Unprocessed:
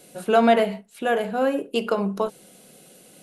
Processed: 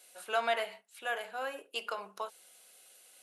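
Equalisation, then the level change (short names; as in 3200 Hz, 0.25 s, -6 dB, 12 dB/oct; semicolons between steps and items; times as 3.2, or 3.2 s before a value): HPF 990 Hz 12 dB/oct; -6.5 dB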